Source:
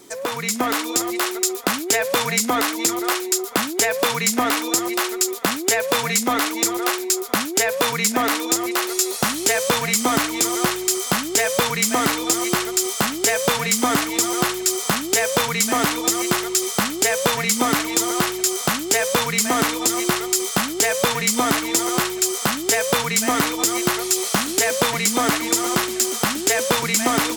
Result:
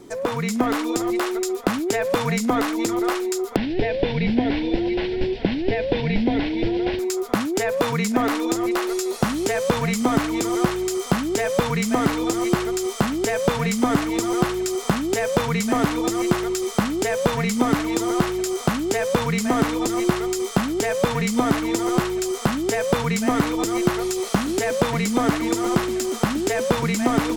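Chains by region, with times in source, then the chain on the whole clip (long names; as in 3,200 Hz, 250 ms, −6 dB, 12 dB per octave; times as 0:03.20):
0:03.56–0:06.99: linear delta modulator 32 kbit/s, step −25.5 dBFS + phaser with its sweep stopped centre 2,900 Hz, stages 4
whole clip: downward compressor 2 to 1, threshold −20 dBFS; spectral tilt −3 dB per octave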